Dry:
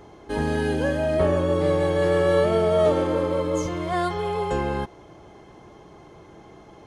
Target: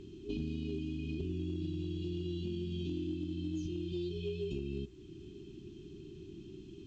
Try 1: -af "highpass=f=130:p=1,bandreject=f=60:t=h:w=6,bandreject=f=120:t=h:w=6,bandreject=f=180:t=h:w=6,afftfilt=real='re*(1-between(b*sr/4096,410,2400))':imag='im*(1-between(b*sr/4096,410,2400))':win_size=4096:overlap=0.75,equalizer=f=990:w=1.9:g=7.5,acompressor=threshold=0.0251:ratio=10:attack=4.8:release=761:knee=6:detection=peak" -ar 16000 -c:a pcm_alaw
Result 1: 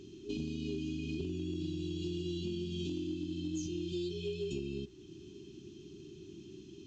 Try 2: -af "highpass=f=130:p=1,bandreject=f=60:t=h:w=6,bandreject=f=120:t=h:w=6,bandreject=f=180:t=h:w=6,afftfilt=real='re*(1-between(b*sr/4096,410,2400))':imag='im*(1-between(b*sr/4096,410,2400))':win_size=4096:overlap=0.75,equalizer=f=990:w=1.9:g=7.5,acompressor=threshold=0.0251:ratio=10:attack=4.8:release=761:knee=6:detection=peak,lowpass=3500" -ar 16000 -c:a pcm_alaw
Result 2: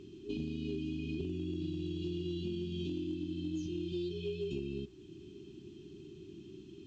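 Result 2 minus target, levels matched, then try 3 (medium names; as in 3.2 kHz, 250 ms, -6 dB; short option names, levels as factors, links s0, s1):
125 Hz band -2.5 dB
-af "bandreject=f=60:t=h:w=6,bandreject=f=120:t=h:w=6,bandreject=f=180:t=h:w=6,afftfilt=real='re*(1-between(b*sr/4096,410,2400))':imag='im*(1-between(b*sr/4096,410,2400))':win_size=4096:overlap=0.75,equalizer=f=990:w=1.9:g=7.5,acompressor=threshold=0.0251:ratio=10:attack=4.8:release=761:knee=6:detection=peak,lowpass=3500" -ar 16000 -c:a pcm_alaw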